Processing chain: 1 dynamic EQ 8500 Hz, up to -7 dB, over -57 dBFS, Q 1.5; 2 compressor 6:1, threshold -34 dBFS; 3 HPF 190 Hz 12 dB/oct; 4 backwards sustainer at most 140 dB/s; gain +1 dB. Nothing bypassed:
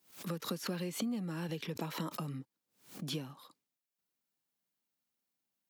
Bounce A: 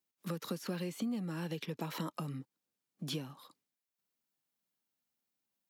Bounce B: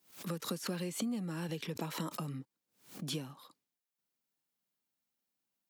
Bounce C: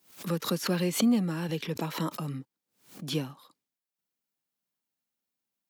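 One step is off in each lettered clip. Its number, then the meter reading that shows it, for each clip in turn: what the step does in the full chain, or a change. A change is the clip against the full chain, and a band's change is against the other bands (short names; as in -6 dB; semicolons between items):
4, momentary loudness spread change -3 LU; 1, 8 kHz band +2.5 dB; 2, 250 Hz band +2.5 dB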